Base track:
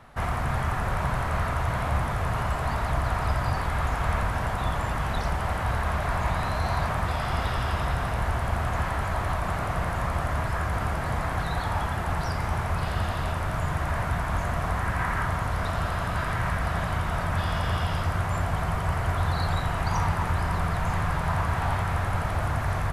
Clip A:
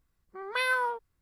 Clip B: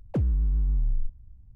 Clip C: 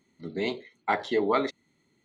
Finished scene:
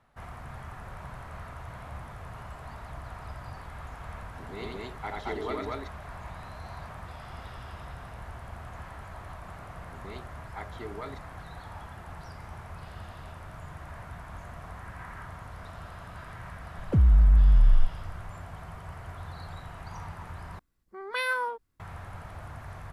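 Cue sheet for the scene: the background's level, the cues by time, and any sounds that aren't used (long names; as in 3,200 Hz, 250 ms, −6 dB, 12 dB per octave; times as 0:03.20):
base track −15.5 dB
0:04.15: mix in C −12 dB + loudspeakers that aren't time-aligned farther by 30 metres −2 dB, 77 metres 0 dB
0:09.68: mix in C −15.5 dB
0:16.78: mix in B −2 dB + low-shelf EQ 140 Hz +9.5 dB
0:20.59: overwrite with A −1.5 dB + parametric band 270 Hz +6 dB 0.59 octaves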